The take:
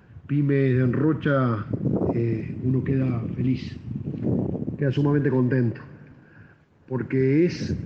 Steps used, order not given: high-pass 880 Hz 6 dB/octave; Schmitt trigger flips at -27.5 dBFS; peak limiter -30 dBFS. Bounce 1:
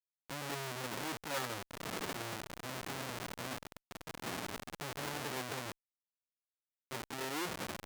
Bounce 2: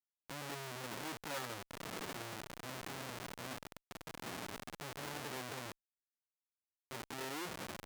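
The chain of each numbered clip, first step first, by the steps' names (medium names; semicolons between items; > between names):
Schmitt trigger > peak limiter > high-pass; Schmitt trigger > high-pass > peak limiter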